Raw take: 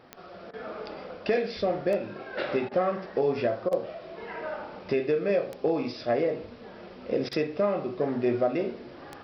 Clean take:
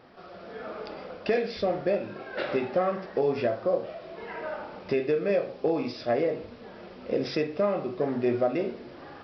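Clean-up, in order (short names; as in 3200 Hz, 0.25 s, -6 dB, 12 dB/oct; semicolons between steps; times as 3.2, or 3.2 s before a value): de-click; interpolate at 0.51/2.69/3.69/7.29, 23 ms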